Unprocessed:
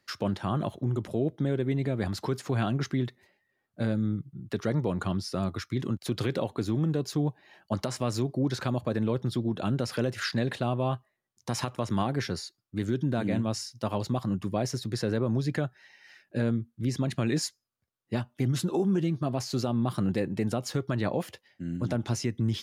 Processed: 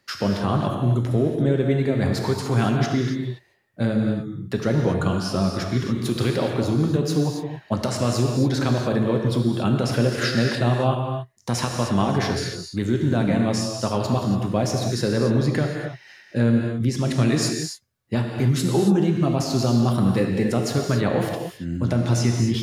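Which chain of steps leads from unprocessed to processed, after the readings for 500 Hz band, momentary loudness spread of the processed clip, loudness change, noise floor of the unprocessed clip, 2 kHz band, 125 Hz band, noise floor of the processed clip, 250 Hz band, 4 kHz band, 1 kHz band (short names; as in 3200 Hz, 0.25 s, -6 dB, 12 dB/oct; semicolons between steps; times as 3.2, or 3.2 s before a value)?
+8.0 dB, 8 LU, +8.0 dB, -78 dBFS, +8.0 dB, +8.0 dB, -51 dBFS, +8.0 dB, +8.0 dB, +8.0 dB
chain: non-linear reverb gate 0.31 s flat, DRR 1 dB; gain +5.5 dB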